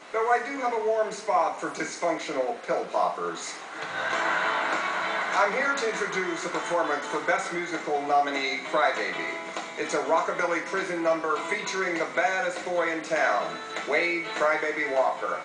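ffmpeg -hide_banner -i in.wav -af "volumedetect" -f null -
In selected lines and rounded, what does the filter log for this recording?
mean_volume: -27.2 dB
max_volume: -9.7 dB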